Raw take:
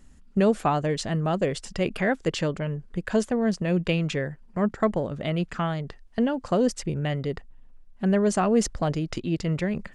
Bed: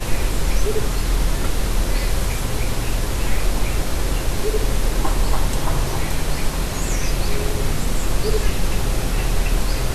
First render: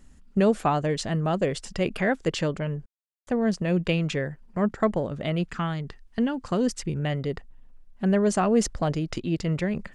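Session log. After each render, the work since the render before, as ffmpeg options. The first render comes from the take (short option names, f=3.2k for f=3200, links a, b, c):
-filter_complex "[0:a]asettb=1/sr,asplit=3[a][b][c];[a]atrim=end=5.484[d];[b]atrim=start=5.48:end=7,asetpts=PTS-STARTPTS,afade=t=in:d=0.004:c=qsin,afade=t=out:st=1.516:d=0.004:c=qsin,equalizer=f=610:t=o:w=0.77:g=-7[e];[c]atrim=start=6.996[f];[d][e]acrossfade=d=0.004:c1=hsin:c2=qsin[g];[g][f]acrossfade=d=0.004:c1=qsin:c2=hsin,asplit=3[h][i][j];[h]atrim=end=2.86,asetpts=PTS-STARTPTS,afade=t=out:st=2.856:d=0.004:c=hsin[k];[i]atrim=start=2.86:end=3.27,asetpts=PTS-STARTPTS,volume=0[l];[j]atrim=start=3.27,asetpts=PTS-STARTPTS,afade=t=in:d=0.004:c=hsin[m];[k][l][m]concat=n=3:v=0:a=1"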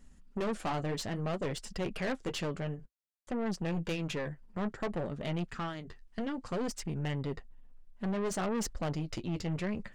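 -af "flanger=delay=4.1:depth=8.1:regen=-40:speed=0.58:shape=triangular,aeval=exprs='(tanh(31.6*val(0)+0.45)-tanh(0.45))/31.6':c=same"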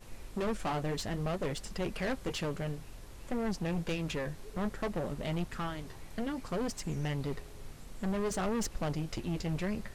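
-filter_complex "[1:a]volume=-27.5dB[a];[0:a][a]amix=inputs=2:normalize=0"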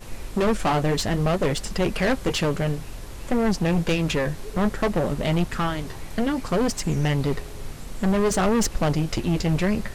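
-af "volume=12dB"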